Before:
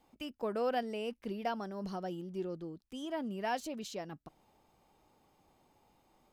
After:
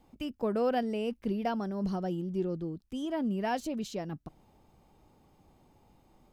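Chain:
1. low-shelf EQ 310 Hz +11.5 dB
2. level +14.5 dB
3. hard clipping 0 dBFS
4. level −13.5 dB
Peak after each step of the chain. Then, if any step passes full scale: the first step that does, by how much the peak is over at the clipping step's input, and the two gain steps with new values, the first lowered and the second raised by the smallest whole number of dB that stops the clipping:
−19.5, −5.0, −5.0, −18.5 dBFS
no step passes full scale

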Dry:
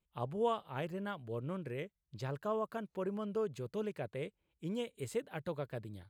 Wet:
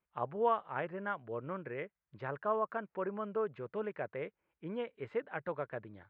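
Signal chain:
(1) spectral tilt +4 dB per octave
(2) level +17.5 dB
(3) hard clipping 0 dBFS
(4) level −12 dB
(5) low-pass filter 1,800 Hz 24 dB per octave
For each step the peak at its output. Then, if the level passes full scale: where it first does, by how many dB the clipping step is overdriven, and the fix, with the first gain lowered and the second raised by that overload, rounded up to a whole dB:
−22.5, −5.0, −5.0, −17.0, −18.5 dBFS
no step passes full scale

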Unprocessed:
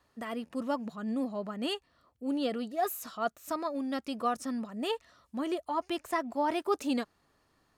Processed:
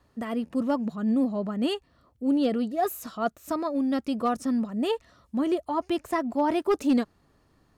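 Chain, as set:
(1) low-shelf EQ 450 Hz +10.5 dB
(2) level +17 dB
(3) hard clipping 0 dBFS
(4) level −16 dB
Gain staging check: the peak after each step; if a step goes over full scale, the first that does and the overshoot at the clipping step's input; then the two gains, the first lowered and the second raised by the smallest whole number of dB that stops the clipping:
−12.5, +4.5, 0.0, −16.0 dBFS
step 2, 4.5 dB
step 2 +12 dB, step 4 −11 dB

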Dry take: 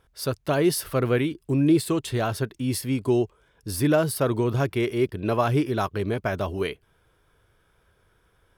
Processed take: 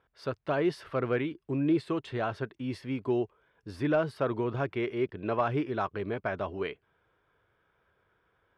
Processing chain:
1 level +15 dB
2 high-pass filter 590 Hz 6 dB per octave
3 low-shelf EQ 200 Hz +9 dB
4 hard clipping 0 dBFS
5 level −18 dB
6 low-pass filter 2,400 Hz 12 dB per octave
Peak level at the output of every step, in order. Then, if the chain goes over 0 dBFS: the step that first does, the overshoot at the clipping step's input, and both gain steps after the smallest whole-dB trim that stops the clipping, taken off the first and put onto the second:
+5.0, +5.0, +4.5, 0.0, −18.0, −17.5 dBFS
step 1, 4.5 dB
step 1 +10 dB, step 5 −13 dB

